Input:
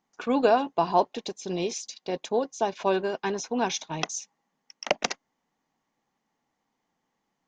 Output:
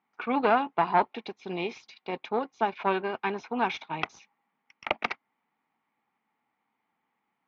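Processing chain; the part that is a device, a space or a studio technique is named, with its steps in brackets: guitar amplifier (valve stage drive 14 dB, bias 0.6; tone controls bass -5 dB, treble -7 dB; cabinet simulation 77–4200 Hz, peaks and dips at 110 Hz +4 dB, 220 Hz +4 dB, 560 Hz -5 dB, 870 Hz +5 dB, 1.3 kHz +7 dB, 2.3 kHz +10 dB)

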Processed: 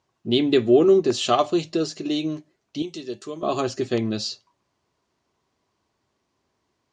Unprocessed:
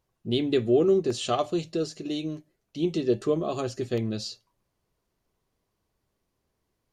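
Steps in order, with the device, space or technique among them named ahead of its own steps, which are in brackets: car door speaker (cabinet simulation 110–7400 Hz, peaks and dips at 120 Hz -4 dB, 180 Hz -6 dB, 490 Hz -5 dB, 1 kHz +3 dB); 2.82–3.43 s: pre-emphasis filter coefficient 0.8; trim +7 dB

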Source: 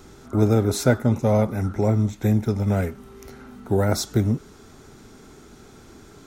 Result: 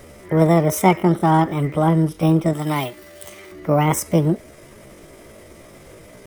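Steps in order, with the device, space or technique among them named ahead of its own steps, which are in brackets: chipmunk voice (pitch shift +7 st); 2.53–3.52 s: tilt EQ +2.5 dB/octave; trim +3.5 dB

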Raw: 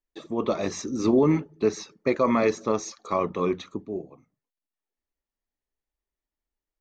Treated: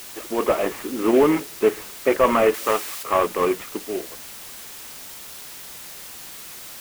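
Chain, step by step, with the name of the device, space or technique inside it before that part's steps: army field radio (band-pass 380–3000 Hz; CVSD coder 16 kbps; white noise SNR 15 dB); 2.54–3.03 s: tilt shelf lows -6 dB, about 760 Hz; trim +8 dB

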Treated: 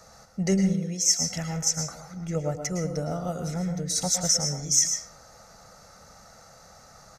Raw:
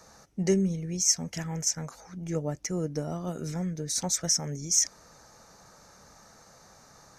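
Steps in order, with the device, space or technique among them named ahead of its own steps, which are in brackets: microphone above a desk (comb 1.5 ms, depth 50%; reverberation RT60 0.45 s, pre-delay 104 ms, DRR 5 dB); 0.73–1.19 s: high-pass 97 Hz -> 350 Hz 24 dB/octave; trim +1.5 dB

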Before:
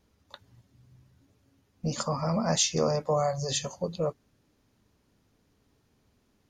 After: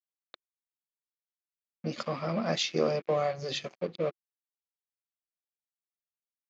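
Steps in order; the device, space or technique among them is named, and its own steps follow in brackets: blown loudspeaker (crossover distortion -42.5 dBFS; cabinet simulation 190–4600 Hz, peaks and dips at 350 Hz +6 dB, 920 Hz -9 dB, 2.3 kHz +7 dB)

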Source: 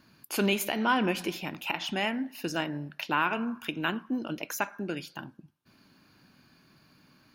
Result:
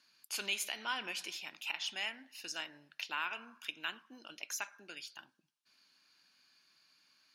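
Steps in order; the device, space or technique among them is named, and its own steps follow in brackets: piezo pickup straight into a mixer (low-pass 6.2 kHz 12 dB/octave; differentiator); trim +3.5 dB

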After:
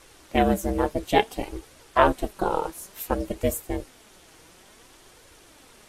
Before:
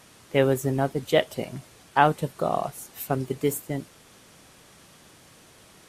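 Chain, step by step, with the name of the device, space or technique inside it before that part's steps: alien voice (ring modulator 190 Hz; flange 0.57 Hz, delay 1.7 ms, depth 4.9 ms, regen +54%); trim +7.5 dB

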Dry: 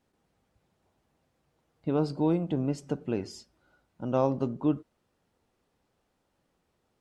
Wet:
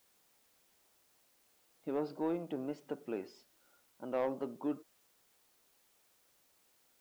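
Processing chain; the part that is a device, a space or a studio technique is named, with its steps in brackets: tape answering machine (band-pass 340–3000 Hz; saturation -20.5 dBFS, distortion -16 dB; wow and flutter; white noise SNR 29 dB); trim -4.5 dB

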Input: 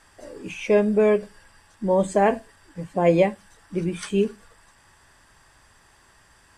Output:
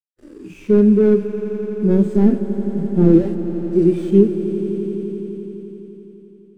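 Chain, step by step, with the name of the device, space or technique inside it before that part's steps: 3.11–4.10 s: graphic EQ 125/250/500/4000/8000 Hz -5/-3/+9/+7/+5 dB; early transistor amplifier (crossover distortion -43.5 dBFS; slew-rate limiter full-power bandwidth 50 Hz); harmonic-percussive split percussive -18 dB; resonant low shelf 450 Hz +9.5 dB, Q 3; echo with a slow build-up 85 ms, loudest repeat 5, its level -15.5 dB

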